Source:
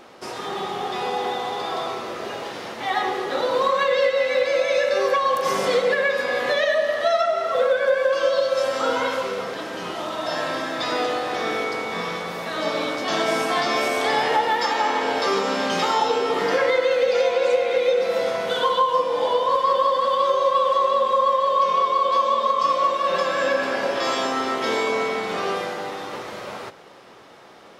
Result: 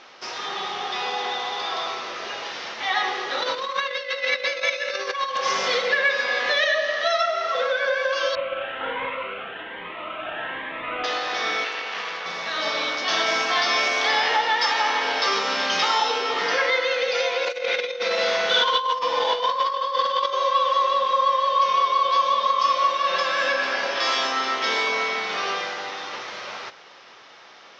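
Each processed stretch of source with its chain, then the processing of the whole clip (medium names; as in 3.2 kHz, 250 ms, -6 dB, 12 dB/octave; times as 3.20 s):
3.42–5.37 s: compressor with a negative ratio -23 dBFS, ratio -0.5 + peaking EQ 780 Hz -5 dB 0.66 oct
6.54–7.41 s: high-pass 83 Hz + band-stop 900 Hz, Q 6.3
8.35–11.04 s: CVSD coder 16 kbps + Shepard-style phaser rising 1.2 Hz
11.64–12.26 s: self-modulated delay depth 0.32 ms + tone controls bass -10 dB, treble -14 dB
17.45–20.33 s: doubling 45 ms -3 dB + compressor with a negative ratio -20 dBFS, ratio -0.5
whole clip: elliptic low-pass 6 kHz, stop band 50 dB; tilt shelf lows -8.5 dB, about 720 Hz; trim -2.5 dB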